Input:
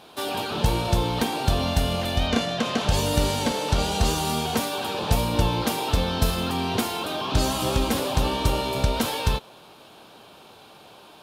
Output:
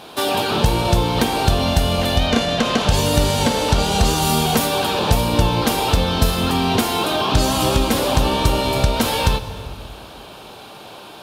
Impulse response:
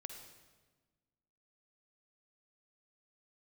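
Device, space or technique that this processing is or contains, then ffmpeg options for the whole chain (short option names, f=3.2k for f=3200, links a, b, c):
ducked reverb: -filter_complex "[0:a]asplit=3[a][b][c];[1:a]atrim=start_sample=2205[d];[b][d]afir=irnorm=-1:irlink=0[e];[c]apad=whole_len=494946[f];[e][f]sidechaincompress=threshold=-25dB:ratio=8:attack=16:release=420,volume=8.5dB[g];[a][g]amix=inputs=2:normalize=0,asettb=1/sr,asplit=3[h][i][j];[h]atrim=end=4.224[k];[i]atrim=start=4.22:end=4.67,asetpts=PTS-STARTPTS,afade=t=in:d=0.004:c=qsin,afade=t=out:st=0.446:d=0.004:c=qsin,highshelf=f=11k:g=7[l];[j]atrim=start=4.666[m];[k][l]acrossfade=d=0.004:c1=hsin:c2=qsin[n];[n][m]acrossfade=d=0.004:c1=qsin:c2=hsin,volume=1.5dB"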